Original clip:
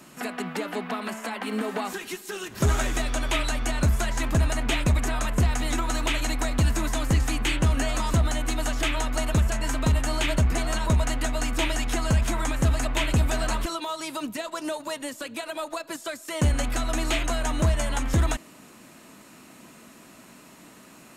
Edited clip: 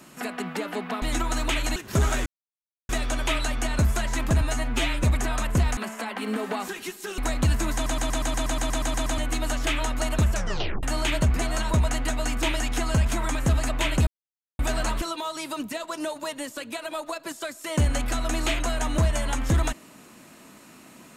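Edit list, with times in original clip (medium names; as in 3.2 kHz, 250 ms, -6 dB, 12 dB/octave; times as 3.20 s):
1.02–2.43 s: swap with 5.60–6.34 s
2.93 s: insert silence 0.63 s
4.45–4.87 s: stretch 1.5×
6.90 s: stutter in place 0.12 s, 12 plays
9.50 s: tape stop 0.49 s
13.23 s: insert silence 0.52 s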